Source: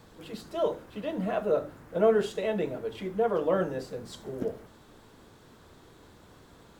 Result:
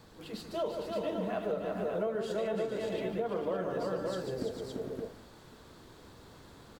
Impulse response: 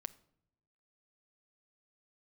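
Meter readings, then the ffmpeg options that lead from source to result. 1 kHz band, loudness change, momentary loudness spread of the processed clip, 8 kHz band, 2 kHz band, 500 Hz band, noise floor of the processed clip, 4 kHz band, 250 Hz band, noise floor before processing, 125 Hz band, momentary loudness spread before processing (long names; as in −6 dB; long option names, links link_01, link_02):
−4.5 dB, −5.5 dB, 20 LU, can't be measured, −4.0 dB, −5.0 dB, −55 dBFS, −1.0 dB, −3.5 dB, −56 dBFS, −3.0 dB, 15 LU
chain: -af "equalizer=frequency=4500:width=4.1:gain=4.5,aecho=1:1:147|339|453|568:0.355|0.562|0.355|0.501,acompressor=threshold=-28dB:ratio=6,volume=-2dB"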